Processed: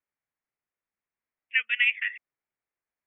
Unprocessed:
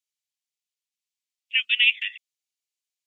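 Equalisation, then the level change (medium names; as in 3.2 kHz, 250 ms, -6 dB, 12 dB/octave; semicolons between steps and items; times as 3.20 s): steep low-pass 2 kHz 36 dB/octave; +9.0 dB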